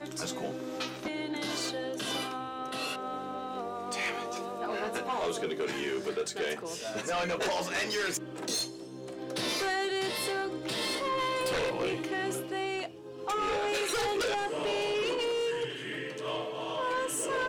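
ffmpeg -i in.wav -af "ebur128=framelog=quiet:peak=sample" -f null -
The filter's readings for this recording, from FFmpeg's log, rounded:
Integrated loudness:
  I:         -32.7 LUFS
  Threshold: -42.7 LUFS
Loudness range:
  LRA:         3.7 LU
  Threshold: -52.5 LUFS
  LRA low:   -34.9 LUFS
  LRA high:  -31.1 LUFS
Sample peak:
  Peak:      -25.5 dBFS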